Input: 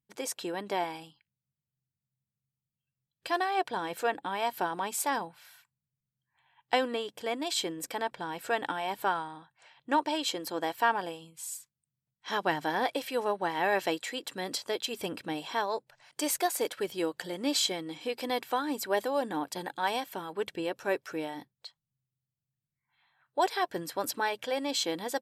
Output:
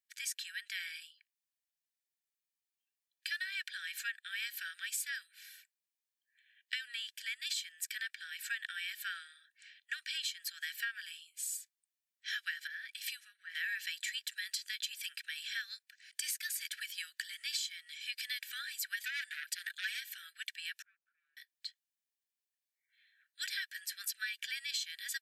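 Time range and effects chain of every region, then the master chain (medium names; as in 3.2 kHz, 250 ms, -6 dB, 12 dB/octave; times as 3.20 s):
12.67–13.55 s: compression, threshold -35 dBFS + three bands expanded up and down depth 100%
18.99–20.00 s: comb 5.8 ms, depth 92% + transformer saturation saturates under 1.7 kHz
20.82–21.37 s: comb filter that takes the minimum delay 0.77 ms + Butterworth band-pass 670 Hz, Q 3.2
whole clip: steep high-pass 1.5 kHz 96 dB/octave; comb 1.7 ms, depth 34%; compression 10:1, threshold -36 dBFS; trim +1.5 dB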